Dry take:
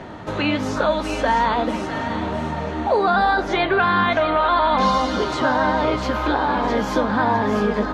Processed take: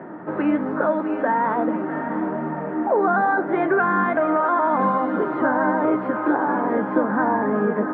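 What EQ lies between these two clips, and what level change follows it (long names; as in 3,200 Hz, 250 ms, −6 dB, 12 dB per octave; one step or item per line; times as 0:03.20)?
elliptic band-pass filter 160–1,700 Hz, stop band 70 dB
parametric band 320 Hz +7.5 dB 0.37 octaves
−1.5 dB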